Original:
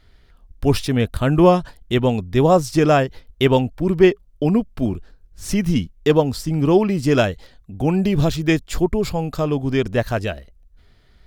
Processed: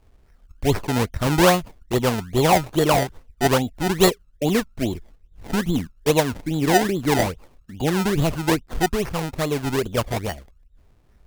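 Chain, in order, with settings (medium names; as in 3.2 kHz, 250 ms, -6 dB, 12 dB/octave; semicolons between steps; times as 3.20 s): local Wiener filter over 9 samples; decimation with a swept rate 27×, swing 100% 2.4 Hz; formant shift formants +3 st; trim -3 dB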